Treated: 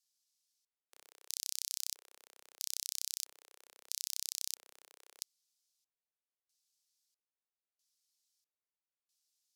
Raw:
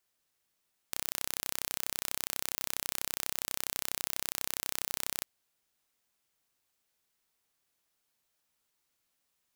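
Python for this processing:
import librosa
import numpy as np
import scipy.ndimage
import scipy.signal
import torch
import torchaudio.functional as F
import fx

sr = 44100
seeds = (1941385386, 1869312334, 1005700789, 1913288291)

y = fx.filter_lfo_bandpass(x, sr, shape='square', hz=0.77, low_hz=460.0, high_hz=5000.0, q=1.8)
y = np.diff(y, prepend=0.0)
y = F.gain(torch.from_numpy(y), 6.0).numpy()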